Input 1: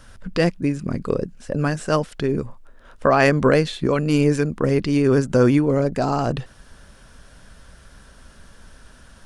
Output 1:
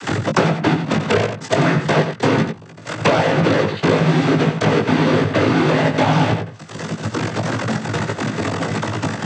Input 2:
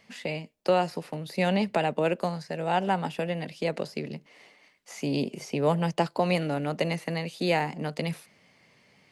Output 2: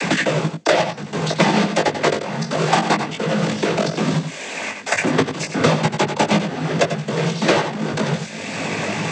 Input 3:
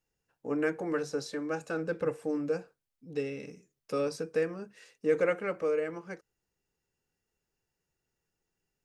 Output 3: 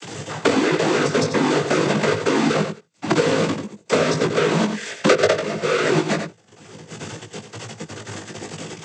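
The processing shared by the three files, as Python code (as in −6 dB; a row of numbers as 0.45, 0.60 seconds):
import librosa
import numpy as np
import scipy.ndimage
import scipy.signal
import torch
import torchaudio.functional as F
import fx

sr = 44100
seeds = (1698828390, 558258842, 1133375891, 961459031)

p1 = fx.halfwave_hold(x, sr)
p2 = fx.env_lowpass_down(p1, sr, base_hz=1700.0, full_db=-14.0)
p3 = fx.dynamic_eq(p2, sr, hz=1800.0, q=1.3, threshold_db=-32.0, ratio=4.0, max_db=4)
p4 = fx.level_steps(p3, sr, step_db=20)
p5 = 10.0 ** (-19.0 / 20.0) * (np.abs((p4 / 10.0 ** (-19.0 / 20.0) + 3.0) % 4.0 - 2.0) - 1.0)
p6 = fx.noise_vocoder(p5, sr, seeds[0], bands=16)
p7 = fx.doubler(p6, sr, ms=19.0, db=-5)
p8 = p7 + fx.echo_single(p7, sr, ms=89, db=-9.5, dry=0)
p9 = fx.band_squash(p8, sr, depth_pct=100)
y = librosa.util.normalize(p9) * 10.0 ** (-1.5 / 20.0)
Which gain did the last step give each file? 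+7.0, +10.0, +20.5 decibels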